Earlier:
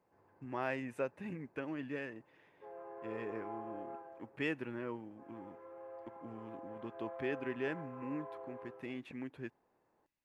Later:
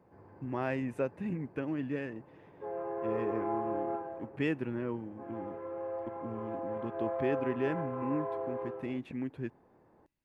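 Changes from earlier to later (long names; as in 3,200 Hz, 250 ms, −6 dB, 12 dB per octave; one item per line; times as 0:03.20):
background +8.0 dB
master: add low-shelf EQ 410 Hz +10.5 dB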